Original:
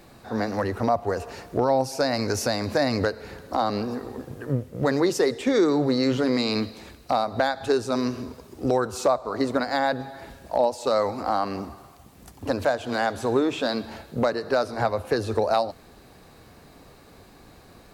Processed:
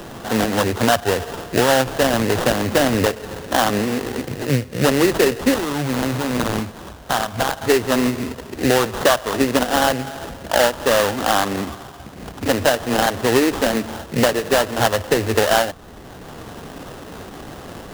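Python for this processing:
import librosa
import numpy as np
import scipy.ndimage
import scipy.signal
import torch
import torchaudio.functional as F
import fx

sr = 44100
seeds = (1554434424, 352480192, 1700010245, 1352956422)

y = fx.peak_eq(x, sr, hz=390.0, db=-15.0, octaves=1.5, at=(5.54, 7.62))
y = fx.sample_hold(y, sr, seeds[0], rate_hz=2300.0, jitter_pct=20)
y = fx.band_squash(y, sr, depth_pct=40)
y = F.gain(torch.from_numpy(y), 6.5).numpy()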